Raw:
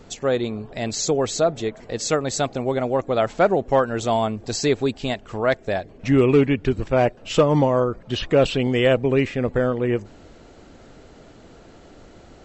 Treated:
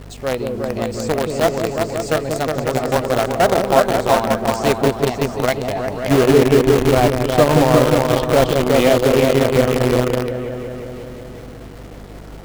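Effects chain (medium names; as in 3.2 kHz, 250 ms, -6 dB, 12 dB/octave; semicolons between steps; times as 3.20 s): treble shelf 3.5 kHz -10.5 dB; delay with an opening low-pass 180 ms, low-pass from 400 Hz, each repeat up 2 oct, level 0 dB; hum 50 Hz, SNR 22 dB; in parallel at -9.5 dB: companded quantiser 2-bit; on the sum: formant shift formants +2 st; trim -2.5 dB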